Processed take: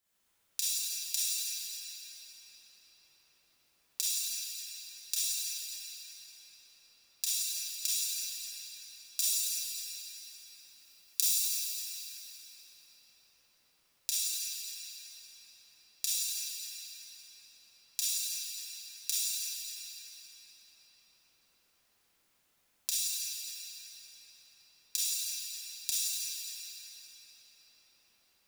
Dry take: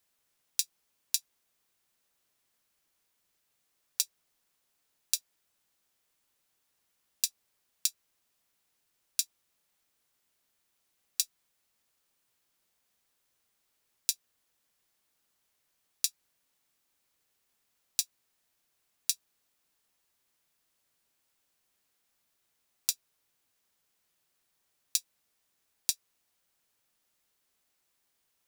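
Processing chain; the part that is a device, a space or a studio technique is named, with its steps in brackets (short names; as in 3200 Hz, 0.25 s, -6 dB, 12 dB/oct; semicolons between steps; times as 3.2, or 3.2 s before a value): 9.2–11.2 high shelf 5100 Hz +11.5 dB; cathedral (reverb RT60 6.1 s, pre-delay 26 ms, DRR -12 dB); gain -6.5 dB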